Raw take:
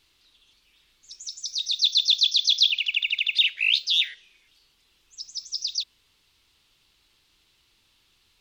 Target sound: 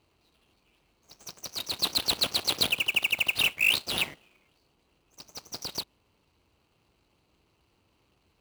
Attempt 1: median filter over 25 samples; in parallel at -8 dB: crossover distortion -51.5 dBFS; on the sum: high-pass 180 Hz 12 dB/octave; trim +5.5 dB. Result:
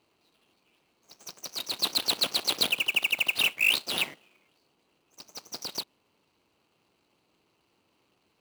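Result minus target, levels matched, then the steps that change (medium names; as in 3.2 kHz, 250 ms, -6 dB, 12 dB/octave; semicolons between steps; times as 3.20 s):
125 Hz band -6.0 dB
change: high-pass 62 Hz 12 dB/octave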